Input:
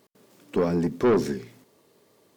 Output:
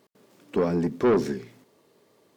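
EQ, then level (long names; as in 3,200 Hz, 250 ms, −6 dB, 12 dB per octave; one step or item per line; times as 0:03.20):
low-shelf EQ 68 Hz −7 dB
high-shelf EQ 5,800 Hz −5.5 dB
0.0 dB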